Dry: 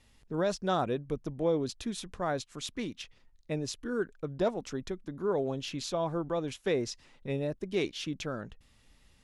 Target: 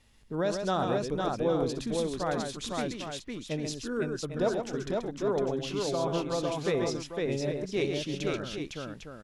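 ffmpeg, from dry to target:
-filter_complex "[0:a]asplit=2[s0][s1];[s1]aecho=0:1:63|133|507|802:0.158|0.501|0.708|0.355[s2];[s0][s2]amix=inputs=2:normalize=0"

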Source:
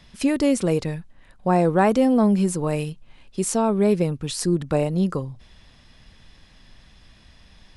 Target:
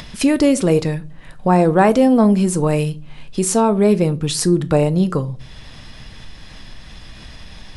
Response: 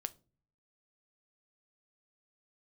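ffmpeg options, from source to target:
-filter_complex "[0:a]asplit=2[s0][s1];[s1]acompressor=threshold=0.0251:ratio=6,volume=1.12[s2];[s0][s2]amix=inputs=2:normalize=0[s3];[1:a]atrim=start_sample=2205[s4];[s3][s4]afir=irnorm=-1:irlink=0,acompressor=mode=upward:threshold=0.0178:ratio=2.5,volume=1.88"

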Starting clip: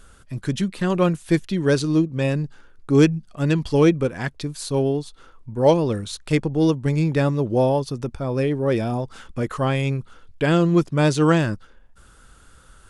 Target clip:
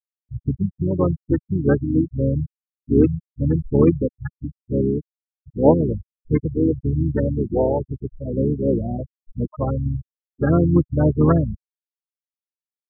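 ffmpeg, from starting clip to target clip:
-filter_complex "[0:a]afftfilt=real='re*gte(hypot(re,im),0.316)':imag='im*gte(hypot(re,im),0.316)':win_size=1024:overlap=0.75,asplit=4[s0][s1][s2][s3];[s1]asetrate=22050,aresample=44100,atempo=2,volume=0.631[s4];[s2]asetrate=33038,aresample=44100,atempo=1.33484,volume=0.316[s5];[s3]asetrate=37084,aresample=44100,atempo=1.18921,volume=0.398[s6];[s0][s4][s5][s6]amix=inputs=4:normalize=0,volume=0.891"

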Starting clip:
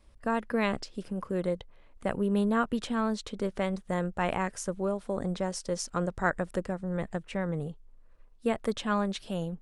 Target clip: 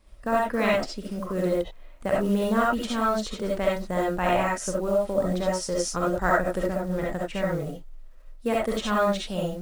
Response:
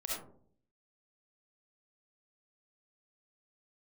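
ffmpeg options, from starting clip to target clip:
-filter_complex "[0:a]acrusher=bits=7:mode=log:mix=0:aa=0.000001[s0];[1:a]atrim=start_sample=2205,atrim=end_sample=4410[s1];[s0][s1]afir=irnorm=-1:irlink=0,volume=1.78"

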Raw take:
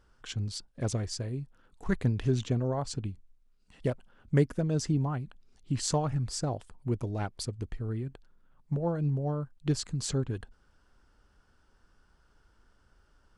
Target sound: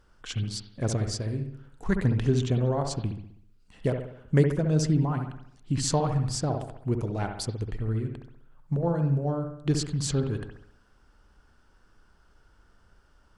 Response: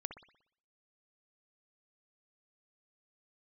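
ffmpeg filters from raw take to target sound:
-filter_complex "[1:a]atrim=start_sample=2205,asetrate=40572,aresample=44100[s0];[0:a][s0]afir=irnorm=-1:irlink=0,volume=2"

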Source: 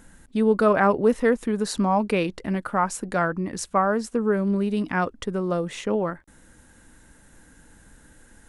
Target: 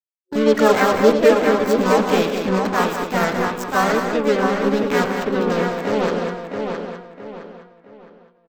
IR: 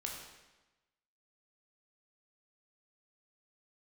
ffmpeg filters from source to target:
-filter_complex "[0:a]acrusher=bits=3:mix=0:aa=0.5,bandreject=f=99.09:t=h:w=4,bandreject=f=198.18:t=h:w=4,bandreject=f=297.27:t=h:w=4,bandreject=f=396.36:t=h:w=4,bandreject=f=495.45:t=h:w=4,bandreject=f=594.54:t=h:w=4,bandreject=f=693.63:t=h:w=4,bandreject=f=792.72:t=h:w=4,bandreject=f=891.81:t=h:w=4,bandreject=f=990.9:t=h:w=4,bandreject=f=1089.99:t=h:w=4,bandreject=f=1189.08:t=h:w=4,bandreject=f=1288.17:t=h:w=4,bandreject=f=1387.26:t=h:w=4,bandreject=f=1486.35:t=h:w=4,bandreject=f=1585.44:t=h:w=4,bandreject=f=1684.53:t=h:w=4,bandreject=f=1783.62:t=h:w=4,bandreject=f=1882.71:t=h:w=4,bandreject=f=1981.8:t=h:w=4,bandreject=f=2080.89:t=h:w=4,bandreject=f=2179.98:t=h:w=4,bandreject=f=2279.07:t=h:w=4,bandreject=f=2378.16:t=h:w=4,bandreject=f=2477.25:t=h:w=4,bandreject=f=2576.34:t=h:w=4,bandreject=f=2675.43:t=h:w=4,bandreject=f=2774.52:t=h:w=4,bandreject=f=2873.61:t=h:w=4,bandreject=f=2972.7:t=h:w=4,bandreject=f=3071.79:t=h:w=4,bandreject=f=3170.88:t=h:w=4,bandreject=f=3269.97:t=h:w=4,bandreject=f=3369.06:t=h:w=4,bandreject=f=3468.15:t=h:w=4,bandreject=f=3567.24:t=h:w=4,bandreject=f=3666.33:t=h:w=4,bandreject=f=3765.42:t=h:w=4,bandreject=f=3864.51:t=h:w=4,asplit=2[s0][s1];[s1]aecho=0:1:110|200:0.237|0.447[s2];[s0][s2]amix=inputs=2:normalize=0,asplit=2[s3][s4];[s4]asetrate=58866,aresample=44100,atempo=0.749154,volume=0.794[s5];[s3][s5]amix=inputs=2:normalize=0,superequalizer=7b=1.58:16b=0.282,asplit=2[s6][s7];[s7]adelay=664,lowpass=f=4100:p=1,volume=0.562,asplit=2[s8][s9];[s9]adelay=664,lowpass=f=4100:p=1,volume=0.35,asplit=2[s10][s11];[s11]adelay=664,lowpass=f=4100:p=1,volume=0.35,asplit=2[s12][s13];[s13]adelay=664,lowpass=f=4100:p=1,volume=0.35[s14];[s8][s10][s12][s14]amix=inputs=4:normalize=0[s15];[s6][s15]amix=inputs=2:normalize=0"

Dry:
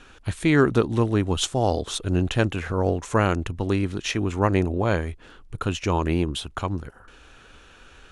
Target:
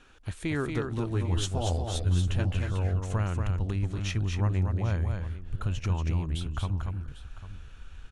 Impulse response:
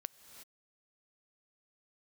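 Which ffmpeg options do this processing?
-filter_complex "[0:a]asubboost=boost=7:cutoff=130,acompressor=threshold=0.126:ratio=3,asettb=1/sr,asplit=3[s0][s1][s2];[s0]atrim=end=0.974[s3];[s1]atrim=start=0.97:end=2.68,asetpts=PTS-STARTPTS,afade=t=in:d=0.004:c=qsin,afade=t=out:st=1.706:d=0.004:c=qsin,asplit=2[s4][s5];[s5]adelay=12,volume=0.631[s6];[s4][s6]amix=inputs=2:normalize=0,atrim=end_sample=75411[s7];[s2]atrim=start=2.676[s8];[s3][s7]acrossfade=d=0.004:c1=hsin:c2=qsin[s9];[s9][s8]acrossfade=d=0.004:c1=qsin:c2=hsin,aecho=1:1:234|797:0.562|0.168,volume=0.376"

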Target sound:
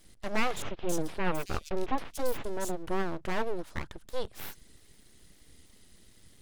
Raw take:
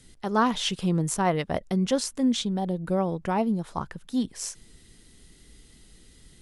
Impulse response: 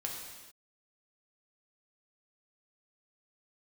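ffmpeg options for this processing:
-filter_complex "[0:a]deesser=0.55,aeval=exprs='abs(val(0))':c=same,asettb=1/sr,asplit=3[s0][s1][s2];[s0]atrim=end=0.624[s3];[s1]atrim=start=0.62:end=2.83,asetpts=PTS-STARTPTS,afade=t=in:d=0.004:c=qsin,afade=t=out:st=2.206:d=0.004:c=qsin,acrossover=split=3500[s4][s5];[s5]adelay=270[s6];[s4][s6]amix=inputs=2:normalize=0,atrim=end_sample=97461[s7];[s2]atrim=start=2.826[s8];[s3][s7]acrossfade=d=0.004:c1=hsin:c2=qsin[s9];[s9][s8]acrossfade=d=0.004:c1=qsin:c2=hsin,volume=0.708"

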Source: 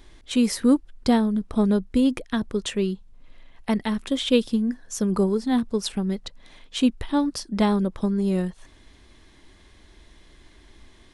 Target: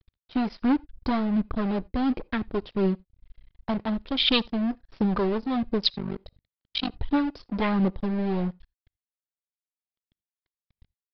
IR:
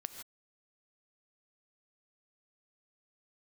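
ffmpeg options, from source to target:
-filter_complex "[0:a]afwtdn=0.0251,acrossover=split=2300[s0][s1];[s0]asoftclip=type=hard:threshold=0.0708[s2];[s1]acontrast=58[s3];[s2][s3]amix=inputs=2:normalize=0,aphaser=in_gain=1:out_gain=1:delay=3.5:decay=0.34:speed=1.4:type=triangular,asplit=3[s4][s5][s6];[s4]afade=t=out:st=5.92:d=0.02[s7];[s5]tremolo=f=49:d=0.824,afade=t=in:st=5.92:d=0.02,afade=t=out:st=6.94:d=0.02[s8];[s6]afade=t=in:st=6.94:d=0.02[s9];[s7][s8][s9]amix=inputs=3:normalize=0,aeval=exprs='sgn(val(0))*max(abs(val(0))-0.00944,0)':c=same,asplit=2[s10][s11];[1:a]atrim=start_sample=2205,afade=t=out:st=0.14:d=0.01,atrim=end_sample=6615[s12];[s11][s12]afir=irnorm=-1:irlink=0,volume=0.447[s13];[s10][s13]amix=inputs=2:normalize=0,aresample=11025,aresample=44100"

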